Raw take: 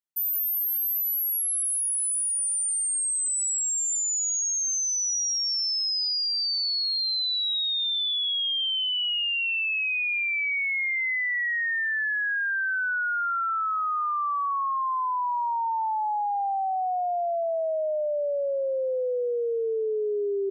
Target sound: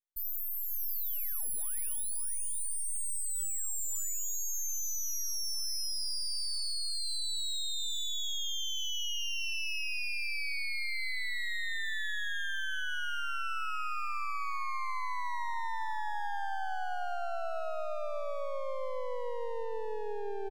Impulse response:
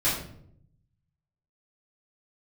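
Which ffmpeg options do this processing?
-af "highpass=320,aeval=exprs='max(val(0),0)':c=same,aecho=1:1:76|550:0.119|0.447,volume=-5.5dB"

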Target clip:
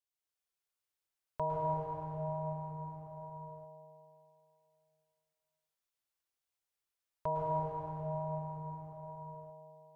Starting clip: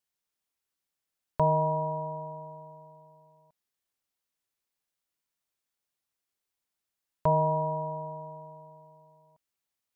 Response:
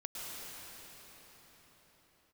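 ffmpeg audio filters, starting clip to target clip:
-filter_complex "[0:a]equalizer=f=210:w=1.7:g=-11.5[a];[1:a]atrim=start_sample=2205[b];[a][b]afir=irnorm=-1:irlink=0,volume=-4.5dB"

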